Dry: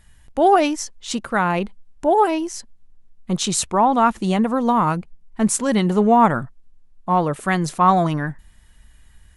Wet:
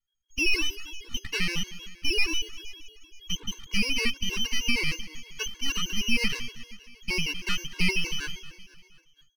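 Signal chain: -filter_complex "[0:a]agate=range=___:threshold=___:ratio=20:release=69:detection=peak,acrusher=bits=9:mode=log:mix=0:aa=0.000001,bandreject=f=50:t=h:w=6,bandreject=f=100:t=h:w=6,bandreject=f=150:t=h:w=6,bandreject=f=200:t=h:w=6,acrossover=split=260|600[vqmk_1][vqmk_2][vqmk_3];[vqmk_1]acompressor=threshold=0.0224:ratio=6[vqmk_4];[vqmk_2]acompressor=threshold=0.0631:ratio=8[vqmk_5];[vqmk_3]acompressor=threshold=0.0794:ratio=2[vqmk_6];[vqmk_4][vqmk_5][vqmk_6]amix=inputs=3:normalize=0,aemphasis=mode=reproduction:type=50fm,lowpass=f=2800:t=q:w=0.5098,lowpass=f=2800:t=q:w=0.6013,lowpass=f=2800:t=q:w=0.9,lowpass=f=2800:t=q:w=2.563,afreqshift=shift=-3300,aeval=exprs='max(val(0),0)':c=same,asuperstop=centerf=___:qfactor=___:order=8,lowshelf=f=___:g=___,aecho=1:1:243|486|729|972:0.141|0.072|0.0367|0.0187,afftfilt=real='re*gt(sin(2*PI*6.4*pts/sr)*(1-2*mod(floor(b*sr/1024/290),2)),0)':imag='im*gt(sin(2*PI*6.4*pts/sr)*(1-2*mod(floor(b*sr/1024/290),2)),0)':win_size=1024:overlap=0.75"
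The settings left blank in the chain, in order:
0.0316, 0.00794, 670, 1.7, 290, 5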